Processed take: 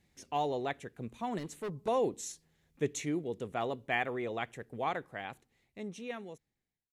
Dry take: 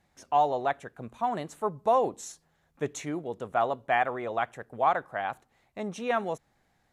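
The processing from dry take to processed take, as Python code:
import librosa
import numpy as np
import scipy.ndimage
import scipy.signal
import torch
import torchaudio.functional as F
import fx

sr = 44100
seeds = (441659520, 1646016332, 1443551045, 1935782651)

y = fx.fade_out_tail(x, sr, length_s=2.14)
y = fx.band_shelf(y, sr, hz=950.0, db=-10.0, octaves=1.7)
y = fx.overload_stage(y, sr, gain_db=34.5, at=(1.38, 1.88))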